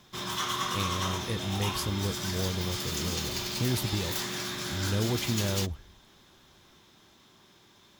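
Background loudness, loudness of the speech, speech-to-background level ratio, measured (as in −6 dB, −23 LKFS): −32.5 LKFS, −33.5 LKFS, −1.0 dB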